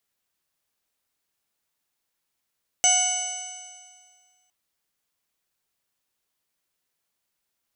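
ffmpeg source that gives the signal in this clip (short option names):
-f lavfi -i "aevalsrc='0.0708*pow(10,-3*t/1.87)*sin(2*PI*730.58*t)+0.0168*pow(10,-3*t/1.87)*sin(2*PI*1464.66*t)+0.0376*pow(10,-3*t/1.87)*sin(2*PI*2205.71*t)+0.0708*pow(10,-3*t/1.87)*sin(2*PI*2957.14*t)+0.00708*pow(10,-3*t/1.87)*sin(2*PI*3722.28*t)+0.00841*pow(10,-3*t/1.87)*sin(2*PI*4504.38*t)+0.0158*pow(10,-3*t/1.87)*sin(2*PI*5306.53*t)+0.133*pow(10,-3*t/1.87)*sin(2*PI*6131.72*t)+0.02*pow(10,-3*t/1.87)*sin(2*PI*6982.77*t)+0.0944*pow(10,-3*t/1.87)*sin(2*PI*7862.34*t)+0.0178*pow(10,-3*t/1.87)*sin(2*PI*8772.94*t)':d=1.66:s=44100"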